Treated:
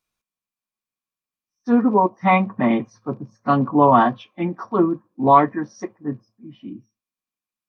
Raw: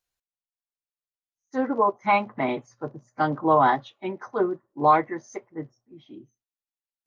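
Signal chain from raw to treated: speed mistake 48 kHz file played as 44.1 kHz; small resonant body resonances 200/1100/2400 Hz, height 11 dB, ringing for 25 ms; gain +2 dB

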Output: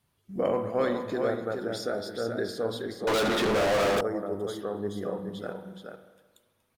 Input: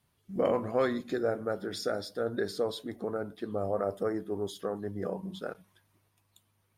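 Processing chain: echo 0.424 s -5.5 dB; spring tank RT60 1.3 s, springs 44/52 ms, chirp 35 ms, DRR 9 dB; 3.07–4.01 overdrive pedal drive 39 dB, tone 6500 Hz, clips at -18.5 dBFS

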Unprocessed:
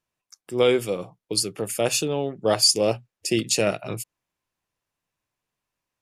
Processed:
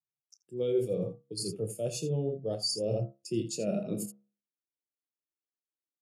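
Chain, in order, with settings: graphic EQ 250/1000/2000 Hz -3/-7/-8 dB; on a send: loudspeakers at several distances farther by 10 m -9 dB, 28 m -9 dB; on the sum: high-pass sweep 130 Hz -> 290 Hz, 3.31–4.37; de-hum 68.33 Hz, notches 29; reverse; compressor 6:1, threshold -35 dBFS, peak gain reduction 19.5 dB; reverse; spectral expander 1.5:1; gain +2.5 dB

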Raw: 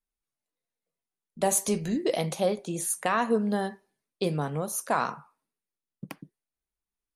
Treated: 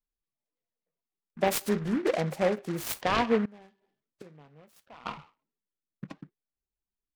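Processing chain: 3.45–5.06 flipped gate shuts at -29 dBFS, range -24 dB; loudest bins only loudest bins 32; noise-modulated delay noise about 1300 Hz, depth 0.082 ms

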